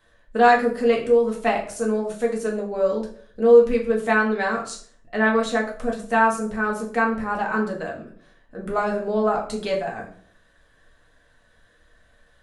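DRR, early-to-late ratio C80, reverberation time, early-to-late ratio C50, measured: -2.0 dB, 12.5 dB, 0.55 s, 8.5 dB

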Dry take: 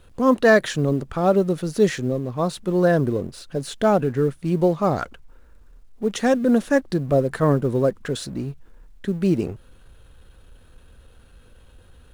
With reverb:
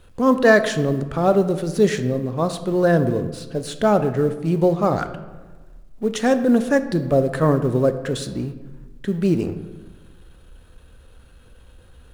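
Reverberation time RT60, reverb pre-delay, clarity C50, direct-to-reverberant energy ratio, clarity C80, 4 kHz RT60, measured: 1.3 s, 18 ms, 11.5 dB, 10.0 dB, 13.5 dB, 0.70 s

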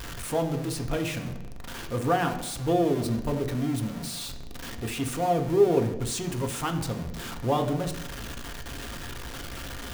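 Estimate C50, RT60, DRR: 10.0 dB, 0.85 s, 4.0 dB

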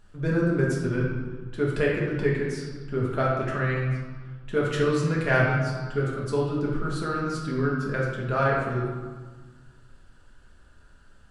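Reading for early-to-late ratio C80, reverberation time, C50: 3.5 dB, 1.5 s, 1.0 dB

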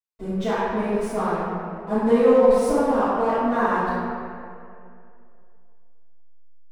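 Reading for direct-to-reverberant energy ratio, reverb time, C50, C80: -20.0 dB, 2.4 s, -5.0 dB, -2.0 dB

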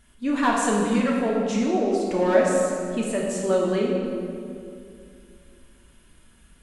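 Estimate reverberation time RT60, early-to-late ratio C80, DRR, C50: 2.5 s, 1.5 dB, -3.5 dB, 0.0 dB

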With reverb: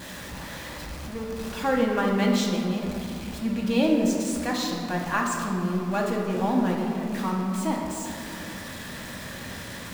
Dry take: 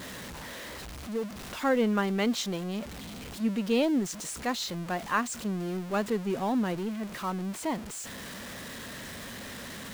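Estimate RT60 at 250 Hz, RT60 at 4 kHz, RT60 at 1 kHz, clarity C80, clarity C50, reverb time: 3.5 s, 1.2 s, 2.5 s, 3.5 dB, 2.0 dB, 2.5 s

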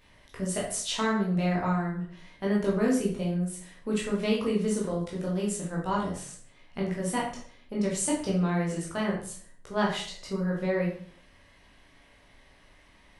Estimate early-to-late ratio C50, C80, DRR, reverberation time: 4.5 dB, 9.0 dB, -4.0 dB, 0.50 s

